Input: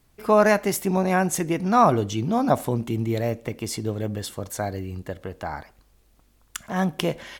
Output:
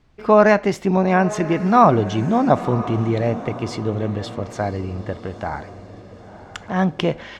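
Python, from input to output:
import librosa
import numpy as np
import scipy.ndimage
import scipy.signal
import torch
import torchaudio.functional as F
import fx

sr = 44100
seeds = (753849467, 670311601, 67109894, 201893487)

y = fx.air_absorb(x, sr, metres=150.0)
y = fx.echo_diffused(y, sr, ms=992, feedback_pct=45, wet_db=-14.5)
y = F.gain(torch.from_numpy(y), 5.0).numpy()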